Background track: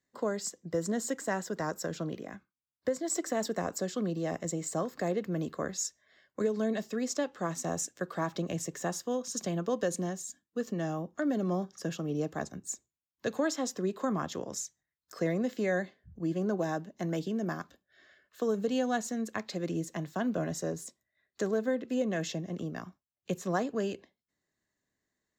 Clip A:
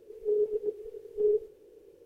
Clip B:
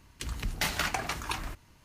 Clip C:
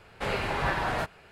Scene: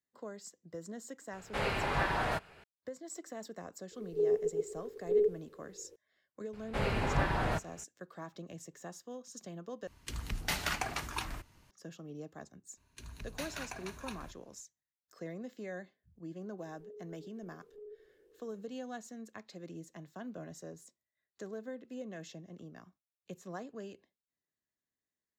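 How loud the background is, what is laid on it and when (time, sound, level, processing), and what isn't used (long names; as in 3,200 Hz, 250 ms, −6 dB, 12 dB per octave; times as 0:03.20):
background track −13 dB
0:01.33: mix in C −3.5 dB
0:03.91: mix in A −2 dB
0:06.53: mix in C −6 dB + low-shelf EQ 360 Hz +8.5 dB
0:09.87: overwrite with B −4 dB
0:12.77: mix in B −13.5 dB + EQ curve with evenly spaced ripples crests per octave 1.5, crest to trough 7 dB
0:16.58: mix in A −10.5 dB + downward compressor 2 to 1, threshold −49 dBFS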